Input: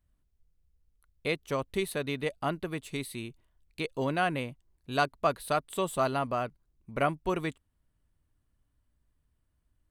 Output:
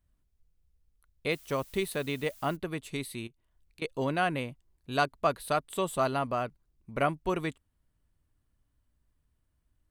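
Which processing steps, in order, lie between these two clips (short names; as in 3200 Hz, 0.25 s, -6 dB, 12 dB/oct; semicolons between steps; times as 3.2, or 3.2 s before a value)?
1.3–2.55 added noise blue -55 dBFS; 3.27–3.82 compressor 10:1, threshold -55 dBFS, peak gain reduction 23.5 dB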